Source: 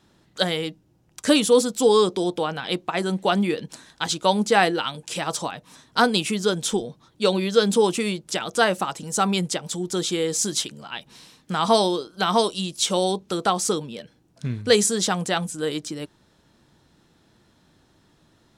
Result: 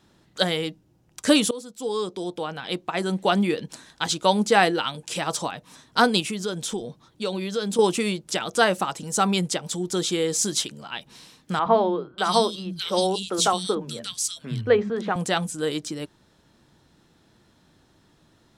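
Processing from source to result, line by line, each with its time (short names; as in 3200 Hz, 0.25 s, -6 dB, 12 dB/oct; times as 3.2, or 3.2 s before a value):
1.51–3.3 fade in, from -21.5 dB
6.2–7.79 compressor 2:1, threshold -29 dBFS
11.59–15.16 three bands offset in time mids, lows, highs 70/590 ms, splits 210/2300 Hz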